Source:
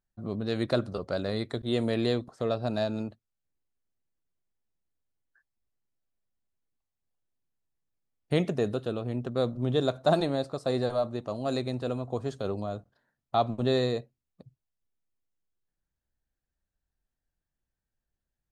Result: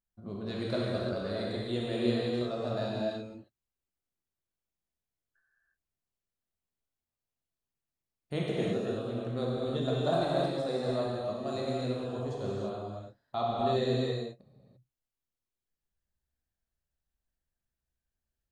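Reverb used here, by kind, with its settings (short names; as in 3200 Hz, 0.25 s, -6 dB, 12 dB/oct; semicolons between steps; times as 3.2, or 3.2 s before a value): non-linear reverb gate 0.37 s flat, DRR -5.5 dB; gain -9 dB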